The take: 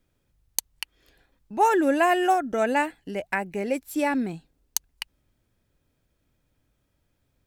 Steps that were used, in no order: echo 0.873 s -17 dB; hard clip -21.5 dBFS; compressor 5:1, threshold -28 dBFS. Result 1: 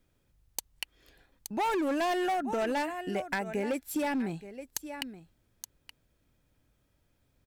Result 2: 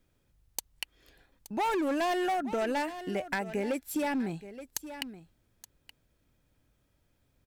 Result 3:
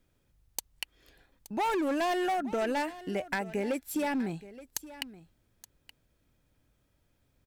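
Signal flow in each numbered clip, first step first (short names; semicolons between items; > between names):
echo > hard clip > compressor; hard clip > echo > compressor; hard clip > compressor > echo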